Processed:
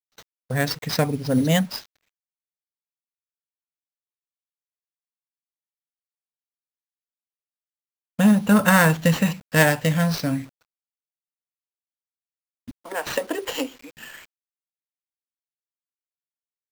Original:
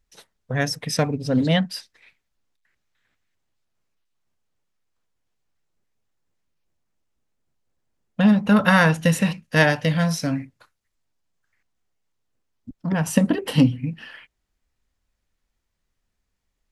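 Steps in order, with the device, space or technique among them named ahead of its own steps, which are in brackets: 12.71–13.97 s: steep high-pass 350 Hz 36 dB/octave; early 8-bit sampler (sample-rate reducer 10 kHz, jitter 0%; bit crusher 8-bit); gate with hold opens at -40 dBFS

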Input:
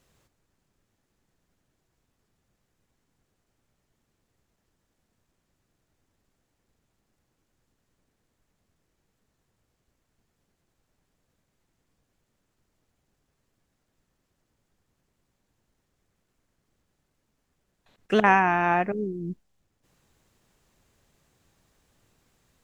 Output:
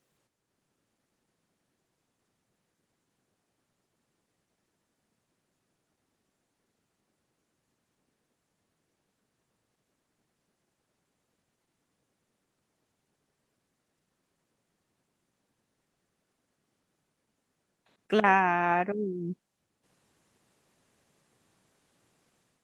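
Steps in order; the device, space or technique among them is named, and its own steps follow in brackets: video call (high-pass 150 Hz 12 dB/octave; level rider gain up to 6.5 dB; trim -6 dB; Opus 24 kbps 48 kHz)

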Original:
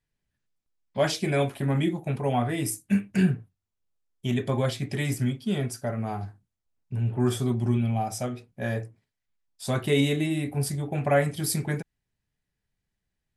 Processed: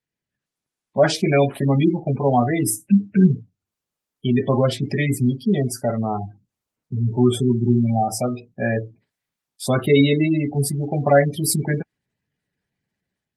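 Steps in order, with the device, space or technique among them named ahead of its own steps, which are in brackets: noise-suppressed video call (high-pass 130 Hz 12 dB/octave; spectral gate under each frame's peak -20 dB strong; level rider gain up to 9 dB; Opus 32 kbps 48 kHz)

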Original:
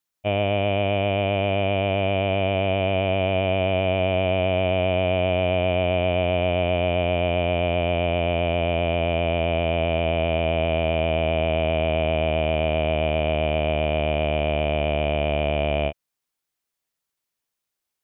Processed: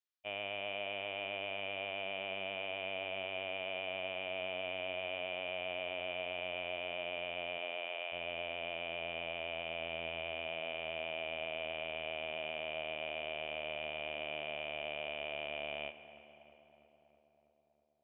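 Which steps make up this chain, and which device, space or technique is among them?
distance through air 270 m; dub delay into a spring reverb (filtered feedback delay 324 ms, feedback 70%, low-pass 2 kHz, level -16 dB; spring tank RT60 2.7 s, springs 36/59 ms, chirp 55 ms, DRR 13.5 dB); 7.57–8.11 s: high-pass 190 Hz -> 600 Hz 12 dB/octave; differentiator; trim +2 dB

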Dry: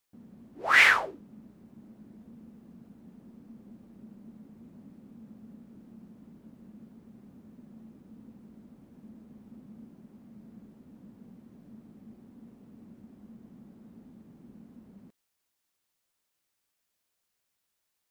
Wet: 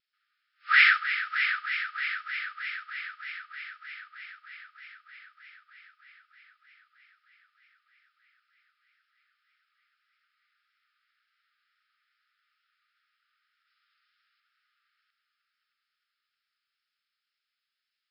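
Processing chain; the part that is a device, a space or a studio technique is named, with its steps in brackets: FFT band-pass 1.2–5.4 kHz; multi-head tape echo (multi-head delay 311 ms, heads first and second, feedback 72%, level -11 dB; wow and flutter 23 cents); 13.67–14.40 s: tilt EQ +2 dB/octave

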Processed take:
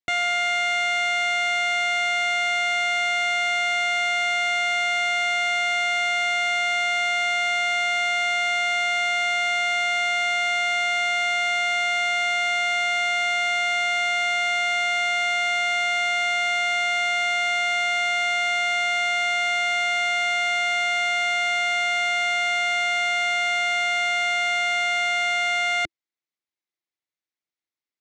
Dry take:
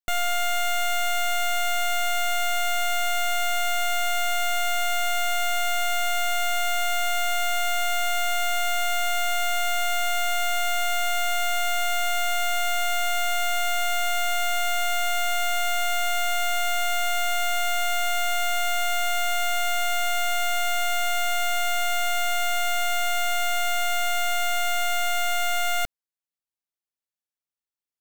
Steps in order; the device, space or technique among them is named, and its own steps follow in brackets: car door speaker (cabinet simulation 97–6600 Hz, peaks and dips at 330 Hz +8 dB, 2.1 kHz +8 dB, 3.8 kHz +3 dB)

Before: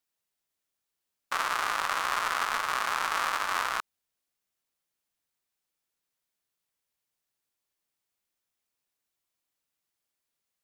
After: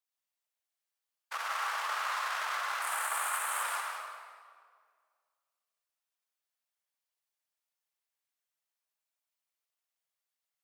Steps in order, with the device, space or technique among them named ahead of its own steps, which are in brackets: 2.82–3.63 s: resonant high shelf 6.9 kHz +9.5 dB, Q 3; whispering ghost (whisper effect; high-pass 540 Hz 24 dB/octave; reverberation RT60 2.0 s, pre-delay 83 ms, DRR -0.5 dB); trim -8 dB

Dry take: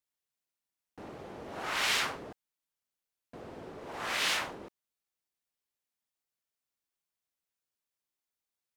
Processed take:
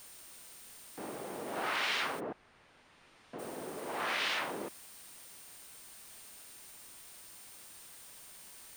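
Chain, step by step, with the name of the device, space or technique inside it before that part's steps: medium wave at night (band-pass 190–4200 Hz; compression, threshold -36 dBFS, peak gain reduction 9.5 dB; tremolo 0.41 Hz, depth 34%; whistle 9 kHz -63 dBFS; white noise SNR 12 dB); 2.19–3.38 s: low-pass 1.7 kHz -> 3.2 kHz 12 dB/octave; trim +7 dB

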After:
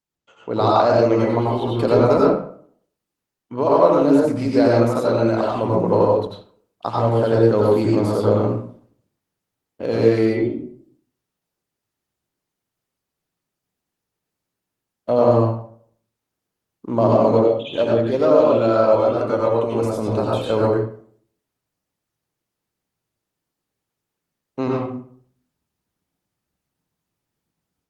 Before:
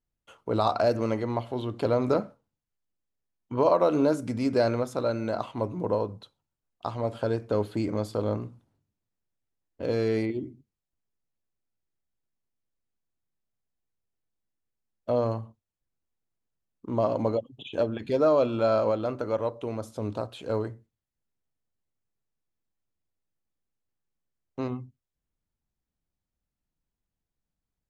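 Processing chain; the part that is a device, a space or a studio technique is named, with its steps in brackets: far-field microphone of a smart speaker (reverberation RT60 0.55 s, pre-delay 82 ms, DRR -3 dB; high-pass 130 Hz 12 dB/octave; level rider gain up to 8 dB; Opus 20 kbps 48 kHz)

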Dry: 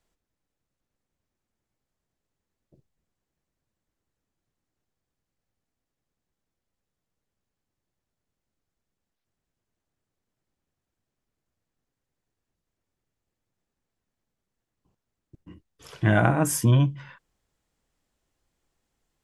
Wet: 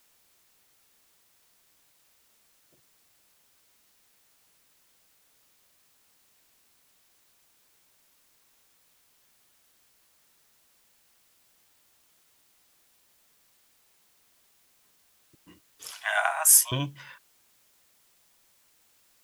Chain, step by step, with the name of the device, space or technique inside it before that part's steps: 15.91–16.72 s: steep high-pass 660 Hz 72 dB/octave; turntable without a phono preamp (RIAA curve recording; white noise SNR 29 dB); trim -1 dB

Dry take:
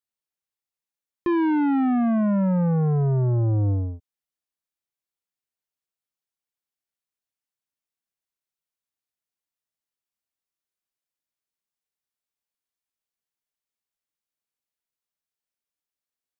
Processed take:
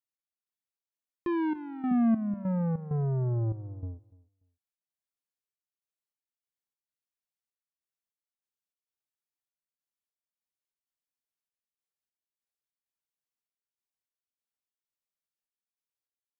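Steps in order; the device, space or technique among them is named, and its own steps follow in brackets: 1.91–2.34 s: peaking EQ 190 Hz +15 dB 0.4 oct; trance gate with a delay (trance gate "x..xx.xxxx..x" 98 bpm -12 dB; feedback delay 292 ms, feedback 19%, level -22 dB); trim -7.5 dB

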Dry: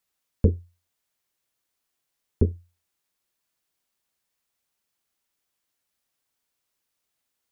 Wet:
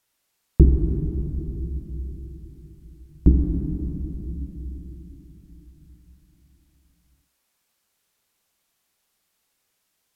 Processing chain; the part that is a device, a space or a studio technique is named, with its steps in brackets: slowed and reverbed (tape speed -26%; reverberation RT60 3.8 s, pre-delay 26 ms, DRR 2 dB); trim +5 dB

